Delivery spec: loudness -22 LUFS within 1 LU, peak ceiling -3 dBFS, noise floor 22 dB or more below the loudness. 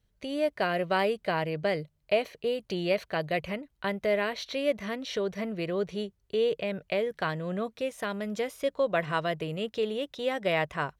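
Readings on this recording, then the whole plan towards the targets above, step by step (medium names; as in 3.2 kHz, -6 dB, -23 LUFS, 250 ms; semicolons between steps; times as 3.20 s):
loudness -30.5 LUFS; peak level -13.0 dBFS; loudness target -22.0 LUFS
-> trim +8.5 dB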